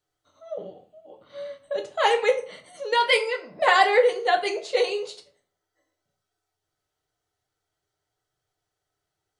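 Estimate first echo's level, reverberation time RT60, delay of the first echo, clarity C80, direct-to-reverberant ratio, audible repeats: no echo audible, 0.45 s, no echo audible, 17.0 dB, 2.5 dB, no echo audible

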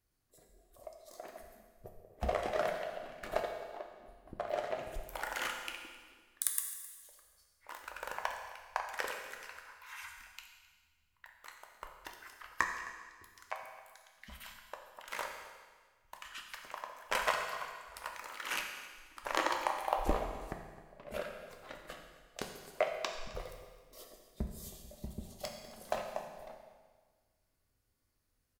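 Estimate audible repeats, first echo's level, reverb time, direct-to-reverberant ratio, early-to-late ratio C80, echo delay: 1, −18.5 dB, 1.5 s, 2.0 dB, 6.0 dB, 262 ms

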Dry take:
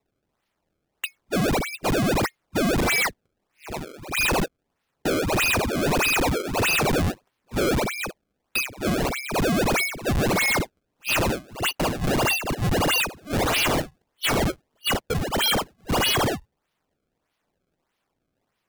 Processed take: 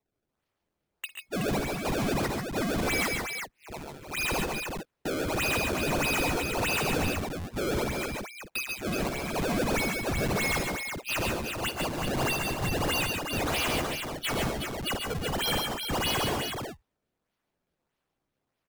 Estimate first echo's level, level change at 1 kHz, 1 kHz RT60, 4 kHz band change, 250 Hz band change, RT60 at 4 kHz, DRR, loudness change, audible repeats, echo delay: −16.5 dB, −5.5 dB, no reverb audible, −5.5 dB, −5.5 dB, no reverb audible, no reverb audible, −6.0 dB, 3, 54 ms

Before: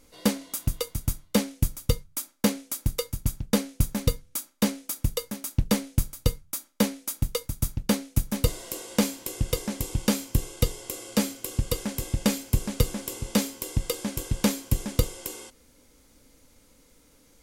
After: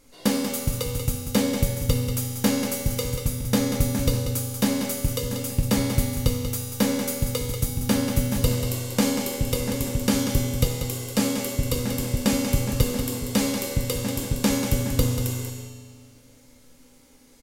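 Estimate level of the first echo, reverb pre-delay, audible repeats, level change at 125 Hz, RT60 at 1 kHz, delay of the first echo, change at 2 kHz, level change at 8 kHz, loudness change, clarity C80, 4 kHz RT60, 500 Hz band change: −8.0 dB, 4 ms, 1, +4.0 dB, 1.9 s, 188 ms, +4.5 dB, +3.5 dB, +3.5 dB, 1.5 dB, 1.7 s, +4.0 dB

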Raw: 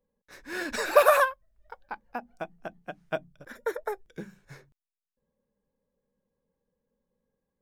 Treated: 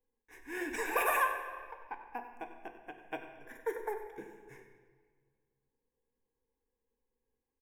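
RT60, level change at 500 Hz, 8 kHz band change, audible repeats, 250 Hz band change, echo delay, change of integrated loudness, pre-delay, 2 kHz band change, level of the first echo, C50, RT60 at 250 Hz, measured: 1.7 s, −12.5 dB, −5.5 dB, 1, −4.0 dB, 95 ms, −9.5 dB, 6 ms, −5.5 dB, −13.5 dB, 6.5 dB, 1.9 s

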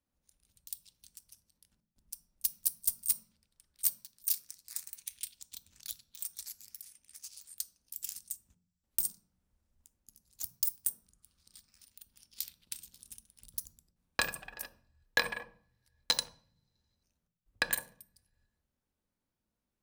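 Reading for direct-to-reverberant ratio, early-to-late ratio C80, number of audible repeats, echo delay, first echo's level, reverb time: 9.0 dB, 19.5 dB, no echo audible, no echo audible, no echo audible, 0.50 s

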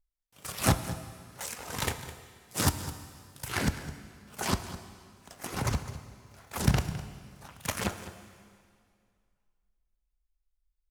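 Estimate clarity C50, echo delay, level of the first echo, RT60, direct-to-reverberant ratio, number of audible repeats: 10.5 dB, 208 ms, −15.5 dB, 2.2 s, 9.5 dB, 1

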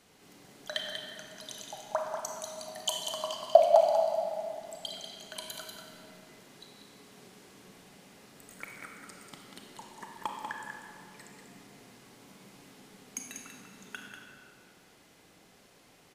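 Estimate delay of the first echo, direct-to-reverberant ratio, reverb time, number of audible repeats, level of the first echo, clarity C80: 191 ms, −1.0 dB, 2.4 s, 1, −6.0 dB, 1.0 dB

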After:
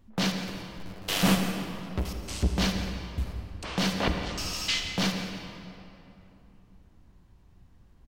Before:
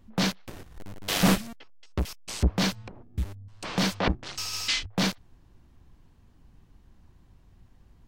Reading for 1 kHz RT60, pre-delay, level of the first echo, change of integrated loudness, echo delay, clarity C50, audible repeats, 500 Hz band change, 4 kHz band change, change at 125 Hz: 2.8 s, 39 ms, −13.5 dB, −1.5 dB, 173 ms, 4.0 dB, 1, −0.5 dB, 0.0 dB, −0.5 dB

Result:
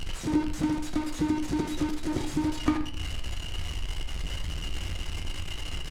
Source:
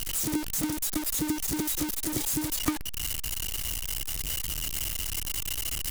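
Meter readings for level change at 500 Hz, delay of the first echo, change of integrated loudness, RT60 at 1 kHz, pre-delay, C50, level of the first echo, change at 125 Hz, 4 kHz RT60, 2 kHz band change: +3.5 dB, 78 ms, −2.5 dB, 0.50 s, 9 ms, 8.5 dB, −12.0 dB, +4.5 dB, 0.30 s, −0.5 dB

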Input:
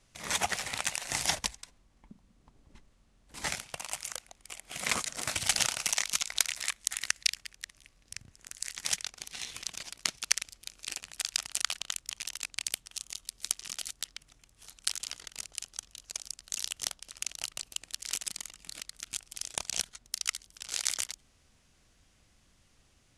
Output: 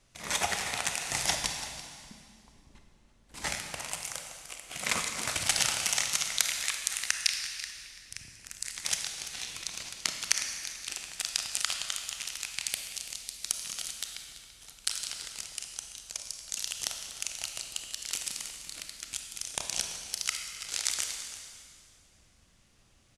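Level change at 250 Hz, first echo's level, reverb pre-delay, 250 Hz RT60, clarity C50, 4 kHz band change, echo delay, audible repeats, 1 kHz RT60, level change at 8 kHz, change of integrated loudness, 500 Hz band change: +1.5 dB, −15.0 dB, 26 ms, 2.3 s, 4.5 dB, +1.5 dB, 336 ms, 1, 2.1 s, +1.5 dB, +1.5 dB, +2.0 dB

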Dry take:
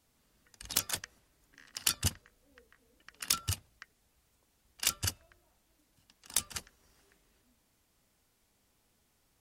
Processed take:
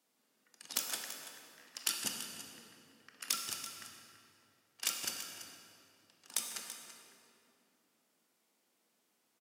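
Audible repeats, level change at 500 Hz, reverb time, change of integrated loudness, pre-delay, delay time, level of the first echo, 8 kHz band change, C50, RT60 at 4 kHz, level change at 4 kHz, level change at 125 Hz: 1, −2.5 dB, 2.8 s, −5.0 dB, 20 ms, 334 ms, −13.0 dB, −3.5 dB, 3.0 dB, 1.8 s, −3.0 dB, −22.5 dB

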